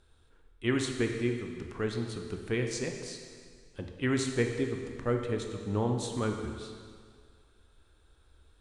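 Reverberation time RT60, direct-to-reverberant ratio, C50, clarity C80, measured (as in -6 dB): 2.0 s, 3.5 dB, 5.0 dB, 6.5 dB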